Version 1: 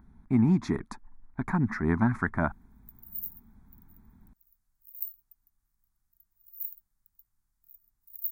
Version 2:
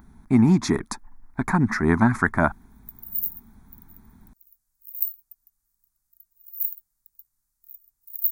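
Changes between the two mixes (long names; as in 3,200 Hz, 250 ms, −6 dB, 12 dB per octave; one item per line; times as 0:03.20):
speech +8.5 dB
master: add bass and treble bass −4 dB, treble +10 dB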